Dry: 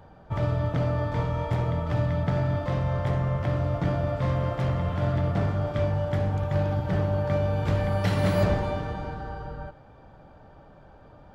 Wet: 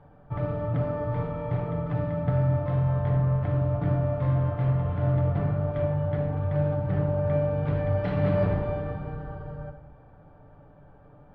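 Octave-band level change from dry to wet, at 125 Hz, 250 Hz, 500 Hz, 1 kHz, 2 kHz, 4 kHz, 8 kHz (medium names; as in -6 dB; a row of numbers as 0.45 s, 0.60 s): +0.5 dB, 0.0 dB, 0.0 dB, -3.5 dB, -5.5 dB, under -10 dB, no reading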